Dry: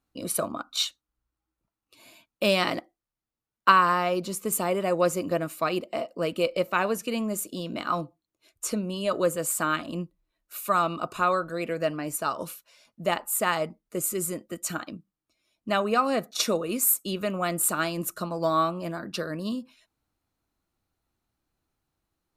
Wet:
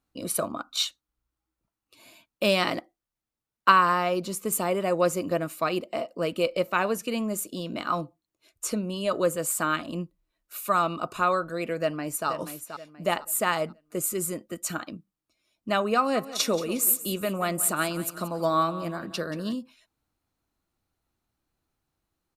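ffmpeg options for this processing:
-filter_complex "[0:a]asplit=2[s0][s1];[s1]afade=t=in:st=11.8:d=0.01,afade=t=out:st=12.28:d=0.01,aecho=0:1:480|960|1440|1920:0.334965|0.117238|0.0410333|0.0143616[s2];[s0][s2]amix=inputs=2:normalize=0,asplit=3[s3][s4][s5];[s3]afade=t=out:st=16.14:d=0.02[s6];[s4]aecho=1:1:180|360|540|720:0.178|0.0694|0.027|0.0105,afade=t=in:st=16.14:d=0.02,afade=t=out:st=19.53:d=0.02[s7];[s5]afade=t=in:st=19.53:d=0.02[s8];[s6][s7][s8]amix=inputs=3:normalize=0"

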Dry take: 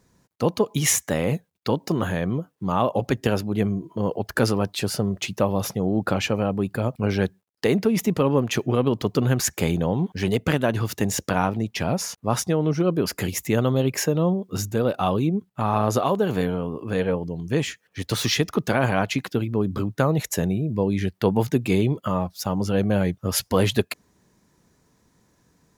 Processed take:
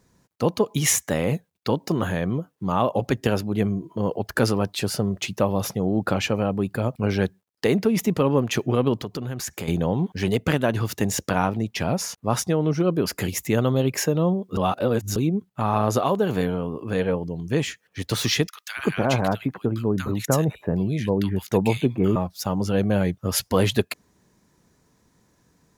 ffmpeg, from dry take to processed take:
-filter_complex "[0:a]asettb=1/sr,asplit=3[s0][s1][s2];[s0]atrim=end=8.984[s3];[s1]atrim=start=8.98:end=9.68,asetpts=PTS-STARTPTS,afade=t=in:d=0.004:c=qsin,afade=t=out:st=0.696:d=0.004:c=qsin,acompressor=threshold=0.0355:ratio=3:attack=3.2:release=140:knee=1:detection=peak[s4];[s2]atrim=start=9.676[s5];[s3][s4]acrossfade=d=0.004:c1=hsin:c2=qsin[s6];[s6][s5]acrossfade=d=0.004:c1=qsin:c2=hsin,asettb=1/sr,asplit=3[s7][s8][s9];[s7]atrim=end=18.474[s10];[s8]atrim=start=18.47:end=22.16,asetpts=PTS-STARTPTS,afade=t=in:d=0.004:c=qsin,afade=t=out:st=3.686:d=0.004:c=qsin,acrossover=split=1500[s11][s12];[s11]adelay=300[s13];[s13][s12]amix=inputs=2:normalize=0,atrim=end_sample=162729[s14];[s9]atrim=start=22.156[s15];[s10][s14]acrossfade=d=0.004:c1=hsin:c2=qsin[s16];[s16][s15]acrossfade=d=0.004:c1=qsin:c2=hsin,asplit=3[s17][s18][s19];[s17]atrim=end=14.572[s20];[s18]atrim=start=14.568:end=15.162,asetpts=PTS-STARTPTS,areverse[s21];[s19]atrim=start=15.158[s22];[s20][s21]acrossfade=d=0.004:c1=hsin:c2=hsin[s23];[s23][s22]acrossfade=d=0.004:c1=hsin:c2=hsin"

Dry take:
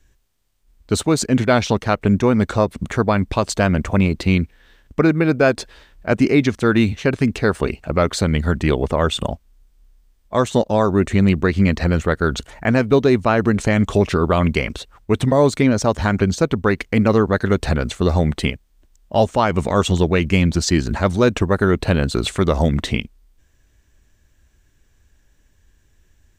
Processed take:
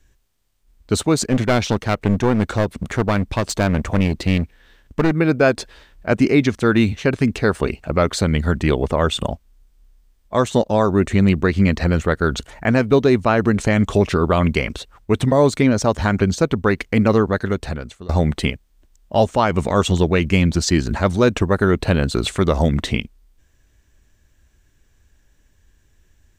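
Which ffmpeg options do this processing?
-filter_complex "[0:a]asettb=1/sr,asplit=3[s0][s1][s2];[s0]atrim=end=1.234[s3];[s1]atrim=start=1.23:end=5.16,asetpts=PTS-STARTPTS,afade=t=in:d=0.004:c=qsin,afade=t=out:st=3.926:d=0.004:c=qsin,aeval=exprs='clip(val(0),-1,0.112)':c=same[s4];[s2]atrim=start=5.156[s5];[s3][s4]acrossfade=d=0.004:c1=hsin:c2=qsin[s6];[s6][s5]acrossfade=d=0.004:c1=qsin:c2=hsin,asplit=2[s7][s8];[s7]atrim=end=18.09,asetpts=PTS-STARTPTS,afade=t=out:st=17.14:d=0.95:silence=0.0707946[s9];[s8]atrim=start=18.09,asetpts=PTS-STARTPTS,afade=t=in:d=0.004:c=hsin:silence=0.0707946[s10];[s9][s10]concat=n=2:v=0:a=1"

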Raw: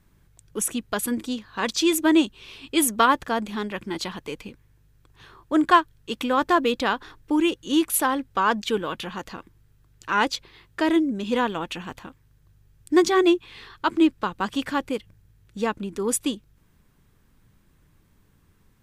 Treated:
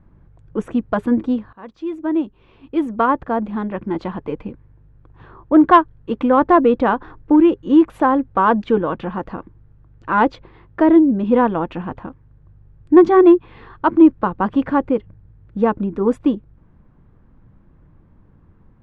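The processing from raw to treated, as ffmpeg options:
-filter_complex "[0:a]asplit=2[s0][s1];[s0]atrim=end=1.53,asetpts=PTS-STARTPTS,afade=t=out:st=1.526:d=0.004:c=hsin:silence=0.0841395[s2];[s1]atrim=start=1.53,asetpts=PTS-STARTPTS,afade=t=in:d=2.91:silence=0.0841395[s3];[s2][s3]concat=n=2:v=0:a=1,lowpass=1000,bandreject=f=410:w=12,acontrast=89,volume=1.41"

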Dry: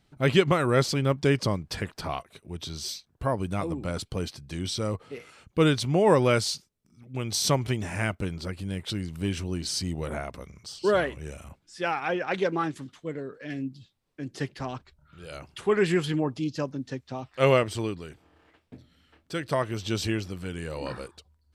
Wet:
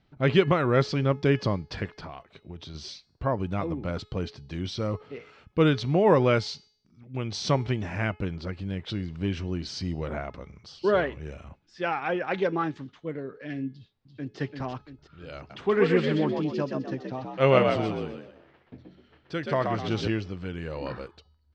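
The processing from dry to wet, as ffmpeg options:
-filter_complex "[0:a]asettb=1/sr,asplit=3[s0][s1][s2];[s0]atrim=end=1.854[s3];[s1]atrim=start=1.85:end=2.75,asetpts=PTS-STARTPTS,afade=t=in:d=0.004:c=qsin,afade=t=out:st=0.896:d=0.004:c=qsin,acompressor=threshold=0.0178:ratio=12:attack=3.2:release=140:knee=1:detection=peak[s4];[s2]atrim=start=2.746[s5];[s3][s4]acrossfade=d=0.004:c1=hsin:c2=qsin[s6];[s6][s5]acrossfade=d=0.004:c1=qsin:c2=hsin,asplit=2[s7][s8];[s8]afade=t=in:st=13.71:d=0.01,afade=t=out:st=14.39:d=0.01,aecho=0:1:340|680|1020|1360|1700|2040:0.530884|0.265442|0.132721|0.0663606|0.0331803|0.0165901[s9];[s7][s9]amix=inputs=2:normalize=0,asettb=1/sr,asplit=3[s10][s11][s12];[s10]atrim=end=15.374[s13];[s11]atrim=start=15.37:end=20.08,asetpts=PTS-STARTPTS,afade=t=in:d=0.004:c=qsin,afade=t=out:st=4.706:d=0.004:c=qsin,asplit=5[s14][s15][s16][s17][s18];[s15]adelay=127,afreqshift=59,volume=0.631[s19];[s16]adelay=254,afreqshift=118,volume=0.221[s20];[s17]adelay=381,afreqshift=177,volume=0.0776[s21];[s18]adelay=508,afreqshift=236,volume=0.0269[s22];[s14][s19][s20][s21][s22]amix=inputs=5:normalize=0,atrim=end_sample=207711[s23];[s12]atrim=start=20.076[s24];[s13][s23]acrossfade=d=0.004:c1=hsin:c2=qsin[s25];[s25][s24]acrossfade=d=0.004:c1=qsin:c2=hsin,lowpass=f=5900:w=0.5412,lowpass=f=5900:w=1.3066,aemphasis=mode=reproduction:type=50fm,bandreject=f=424.6:t=h:w=4,bandreject=f=849.2:t=h:w=4,bandreject=f=1273.8:t=h:w=4,bandreject=f=1698.4:t=h:w=4,bandreject=f=2123:t=h:w=4,bandreject=f=2547.6:t=h:w=4,bandreject=f=2972.2:t=h:w=4,bandreject=f=3396.8:t=h:w=4,bandreject=f=3821.4:t=h:w=4,bandreject=f=4246:t=h:w=4,bandreject=f=4670.6:t=h:w=4,bandreject=f=5095.2:t=h:w=4,bandreject=f=5519.8:t=h:w=4,bandreject=f=5944.4:t=h:w=4,bandreject=f=6369:t=h:w=4,bandreject=f=6793.6:t=h:w=4,bandreject=f=7218.2:t=h:w=4,bandreject=f=7642.8:t=h:w=4,bandreject=f=8067.4:t=h:w=4,bandreject=f=8492:t=h:w=4,bandreject=f=8916.6:t=h:w=4,bandreject=f=9341.2:t=h:w=4,bandreject=f=9765.8:t=h:w=4,bandreject=f=10190.4:t=h:w=4,bandreject=f=10615:t=h:w=4,bandreject=f=11039.6:t=h:w=4,bandreject=f=11464.2:t=h:w=4,bandreject=f=11888.8:t=h:w=4,bandreject=f=12313.4:t=h:w=4,bandreject=f=12738:t=h:w=4,bandreject=f=13162.6:t=h:w=4,bandreject=f=13587.2:t=h:w=4,bandreject=f=14011.8:t=h:w=4"

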